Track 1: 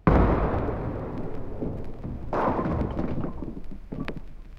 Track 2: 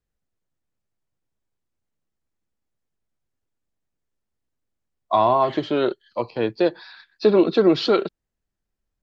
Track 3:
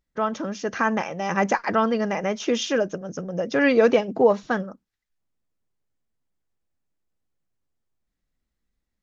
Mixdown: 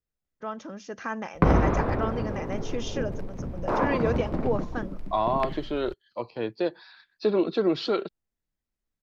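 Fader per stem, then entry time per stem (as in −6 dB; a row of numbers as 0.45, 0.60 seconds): −0.5, −7.5, −10.0 decibels; 1.35, 0.00, 0.25 seconds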